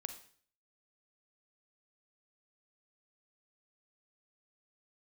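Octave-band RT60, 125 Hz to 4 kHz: 0.55 s, 0.55 s, 0.50 s, 0.50 s, 0.50 s, 0.50 s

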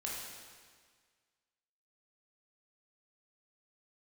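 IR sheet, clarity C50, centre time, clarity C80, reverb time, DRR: 0.0 dB, 94 ms, 2.0 dB, 1.7 s, -4.0 dB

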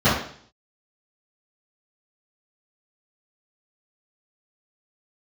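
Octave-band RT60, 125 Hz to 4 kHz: 0.60 s, 0.60 s, 0.55 s, 0.55 s, 0.55 s, 0.60 s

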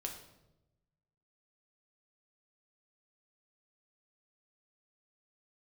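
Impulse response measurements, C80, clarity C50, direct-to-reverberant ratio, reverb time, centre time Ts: 9.5 dB, 7.0 dB, 1.5 dB, 0.95 s, 26 ms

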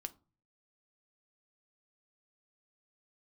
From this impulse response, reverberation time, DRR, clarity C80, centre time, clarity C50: 0.35 s, 9.0 dB, 27.0 dB, 3 ms, 20.5 dB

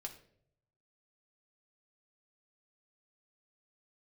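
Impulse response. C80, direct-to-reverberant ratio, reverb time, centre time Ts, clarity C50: 14.5 dB, 2.0 dB, 0.65 s, 12 ms, 11.5 dB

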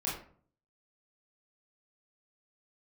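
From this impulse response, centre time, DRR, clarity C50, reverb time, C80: 41 ms, -6.5 dB, 4.5 dB, 0.50 s, 9.0 dB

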